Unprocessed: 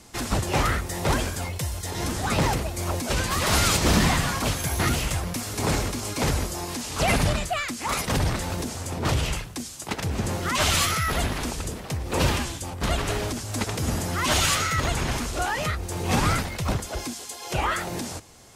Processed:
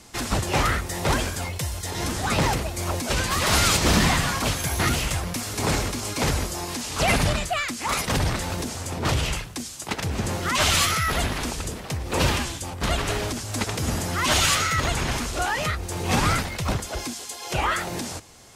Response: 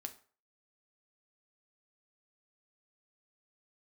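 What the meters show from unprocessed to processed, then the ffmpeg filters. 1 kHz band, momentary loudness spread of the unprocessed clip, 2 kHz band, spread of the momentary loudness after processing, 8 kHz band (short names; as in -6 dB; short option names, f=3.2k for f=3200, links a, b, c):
+1.5 dB, 10 LU, +2.0 dB, 10 LU, +1.5 dB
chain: -af "equalizer=f=3.1k:w=0.32:g=2.5"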